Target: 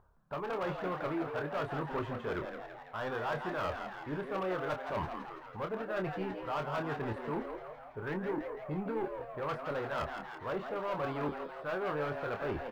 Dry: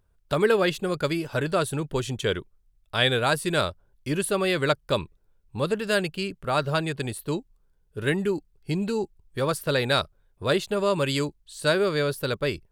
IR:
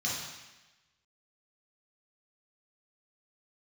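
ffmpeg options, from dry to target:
-filter_complex "[0:a]aeval=exprs='0.422*(cos(1*acos(clip(val(0)/0.422,-1,1)))-cos(1*PI/2))+0.188*(cos(2*acos(clip(val(0)/0.422,-1,1)))-cos(2*PI/2))+0.00944*(cos(5*acos(clip(val(0)/0.422,-1,1)))-cos(5*PI/2))+0.00596*(cos(6*acos(clip(val(0)/0.422,-1,1)))-cos(6*PI/2))+0.0106*(cos(8*acos(clip(val(0)/0.422,-1,1)))-cos(8*PI/2))':channel_layout=same,equalizer=frequency=860:width_type=o:width=1.5:gain=9,areverse,acompressor=threshold=-32dB:ratio=8,areverse,lowpass=frequency=1300:width_type=q:width=1.7,acontrast=23,asoftclip=type=tanh:threshold=-26dB,asplit=2[link_01][link_02];[link_02]adelay=27,volume=-7dB[link_03];[link_01][link_03]amix=inputs=2:normalize=0,asplit=2[link_04][link_05];[link_05]asplit=8[link_06][link_07][link_08][link_09][link_10][link_11][link_12][link_13];[link_06]adelay=166,afreqshift=120,volume=-7dB[link_14];[link_07]adelay=332,afreqshift=240,volume=-11.6dB[link_15];[link_08]adelay=498,afreqshift=360,volume=-16.2dB[link_16];[link_09]adelay=664,afreqshift=480,volume=-20.7dB[link_17];[link_10]adelay=830,afreqshift=600,volume=-25.3dB[link_18];[link_11]adelay=996,afreqshift=720,volume=-29.9dB[link_19];[link_12]adelay=1162,afreqshift=840,volume=-34.5dB[link_20];[link_13]adelay=1328,afreqshift=960,volume=-39.1dB[link_21];[link_14][link_15][link_16][link_17][link_18][link_19][link_20][link_21]amix=inputs=8:normalize=0[link_22];[link_04][link_22]amix=inputs=2:normalize=0,volume=-5dB" -ar 44100 -c:a adpcm_ima_wav

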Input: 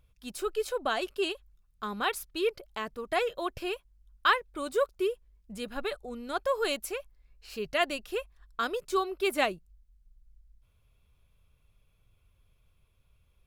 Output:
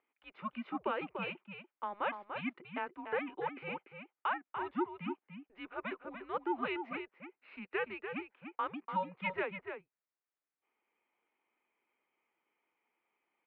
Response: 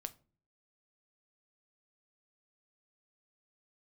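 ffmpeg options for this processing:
-filter_complex "[0:a]highpass=frequency=570:width_type=q:width=0.5412,highpass=frequency=570:width_type=q:width=1.307,lowpass=frequency=2700:width_type=q:width=0.5176,lowpass=frequency=2700:width_type=q:width=0.7071,lowpass=frequency=2700:width_type=q:width=1.932,afreqshift=-200,alimiter=limit=-22dB:level=0:latency=1:release=288,asplit=2[link_01][link_02];[link_02]adelay=291.5,volume=-7dB,highshelf=frequency=4000:gain=-6.56[link_03];[link_01][link_03]amix=inputs=2:normalize=0,volume=-2dB"

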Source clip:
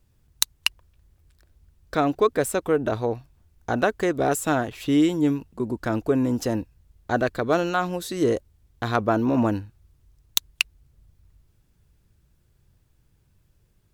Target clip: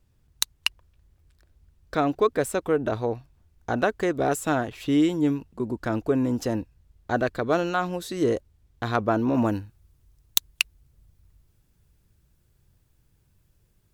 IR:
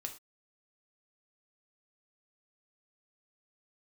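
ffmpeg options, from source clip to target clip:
-af "asetnsamples=nb_out_samples=441:pad=0,asendcmd='9.35 highshelf g 4.5',highshelf=frequency=7600:gain=-4.5,volume=-1.5dB"

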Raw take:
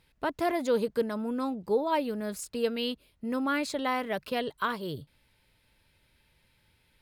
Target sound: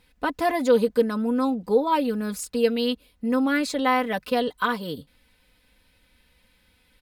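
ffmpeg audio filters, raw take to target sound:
ffmpeg -i in.wav -af "aecho=1:1:4:0.7,volume=4dB" out.wav

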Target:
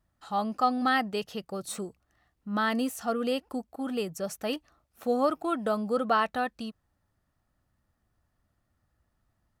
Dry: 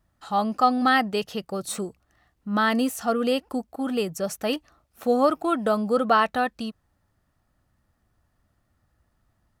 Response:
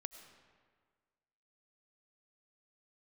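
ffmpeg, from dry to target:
-af "volume=-5.5dB"

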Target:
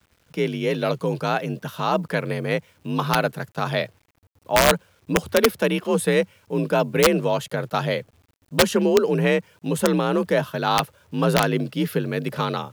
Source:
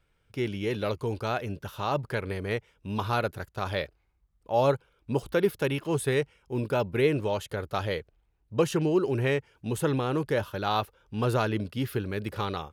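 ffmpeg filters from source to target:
ffmpeg -i in.wav -af "afreqshift=45,aeval=exprs='(mod(5.01*val(0)+1,2)-1)/5.01':channel_layout=same,acrusher=bits=10:mix=0:aa=0.000001,volume=6.5dB" out.wav

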